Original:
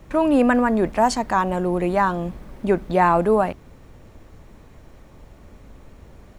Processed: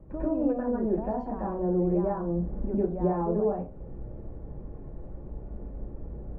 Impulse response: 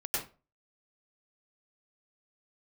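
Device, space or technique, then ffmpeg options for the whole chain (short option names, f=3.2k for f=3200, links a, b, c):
television next door: -filter_complex "[0:a]acompressor=threshold=-32dB:ratio=3,lowpass=570[a];[1:a]atrim=start_sample=2205[b];[a][b]afir=irnorm=-1:irlink=0"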